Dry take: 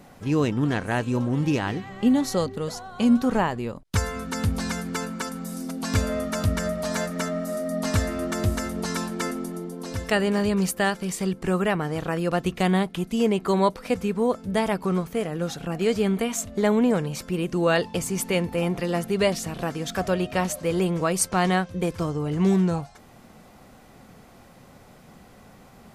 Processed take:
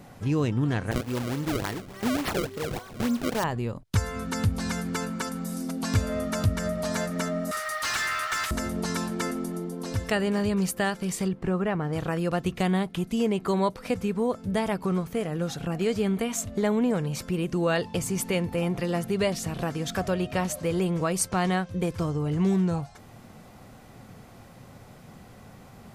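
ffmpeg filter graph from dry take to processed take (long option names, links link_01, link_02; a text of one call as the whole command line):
ffmpeg -i in.wav -filter_complex "[0:a]asettb=1/sr,asplit=3[link_01][link_02][link_03];[link_01]atrim=end=0.914[link_04];[link_02]atrim=start=0.91:end=3.44,asetpts=PTS-STARTPTS,afade=type=in:duration=0.004:curve=qsin,afade=type=out:start_time=2.526:duration=0.004:curve=qsin,bass=frequency=250:gain=-11,treble=frequency=4000:gain=6,bandreject=frequency=760:width=7.4,acrusher=samples=29:mix=1:aa=0.000001:lfo=1:lforange=46.4:lforate=3.5[link_05];[link_03]atrim=start=3.436[link_06];[link_04][link_05]acrossfade=duration=0.004:curve1=hsin:curve2=qsin[link_07];[link_07][link_06]acrossfade=duration=0.004:curve1=qsin:curve2=hsin,asettb=1/sr,asplit=3[link_08][link_09][link_10];[link_08]atrim=end=7.514[link_11];[link_09]atrim=start=7.51:end=8.51,asetpts=PTS-STARTPTS,afade=type=in:duration=0.004:curve=qsin,afade=type=out:start_time=0.996:duration=0.004:curve=qsin,highpass=frequency=1200:width=0.5412,highpass=frequency=1200:width=1.3066,asplit=2[link_12][link_13];[link_13]highpass=frequency=720:poles=1,volume=24dB,asoftclip=type=tanh:threshold=-16dB[link_14];[link_12][link_14]amix=inputs=2:normalize=0,lowpass=frequency=3100:poles=1,volume=-6dB,acrusher=bits=6:mode=log:mix=0:aa=0.000001[link_15];[link_10]atrim=start=8.506[link_16];[link_11][link_15]acrossfade=duration=0.004:curve1=hsin:curve2=qsin[link_17];[link_17][link_16]acrossfade=duration=0.004:curve1=qsin:curve2=hsin,asettb=1/sr,asplit=3[link_18][link_19][link_20];[link_18]atrim=end=11.284[link_21];[link_19]atrim=start=11.28:end=11.93,asetpts=PTS-STARTPTS,afade=type=in:duration=0.004:curve=qsin,afade=type=out:start_time=0.646:duration=0.004:curve=qsin,lowpass=frequency=1700:poles=1,aeval=exprs='sgn(val(0))*max(abs(val(0))-0.00133,0)':channel_layout=same[link_22];[link_20]atrim=start=11.926[link_23];[link_21][link_22]acrossfade=duration=0.004:curve1=hsin:curve2=qsin[link_24];[link_24][link_23]acrossfade=duration=0.004:curve1=qsin:curve2=hsin,equalizer=frequency=110:width=1.7:gain=7,acompressor=threshold=-28dB:ratio=1.5" out.wav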